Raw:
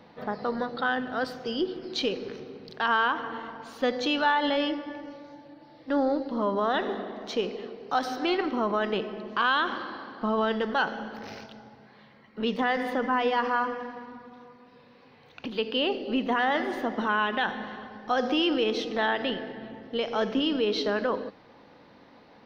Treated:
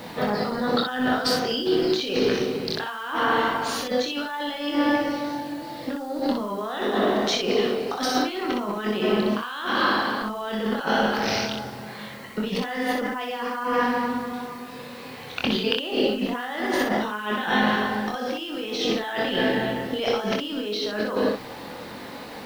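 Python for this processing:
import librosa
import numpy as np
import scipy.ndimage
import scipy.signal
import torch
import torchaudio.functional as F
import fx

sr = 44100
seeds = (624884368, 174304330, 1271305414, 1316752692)

y = fx.high_shelf(x, sr, hz=2500.0, db=6.5)
y = fx.over_compress(y, sr, threshold_db=-35.0, ratio=-1.0)
y = fx.room_early_taps(y, sr, ms=(24, 62), db=(-4.5, -4.0))
y = fx.quant_dither(y, sr, seeds[0], bits=10, dither='triangular')
y = y * librosa.db_to_amplitude(6.5)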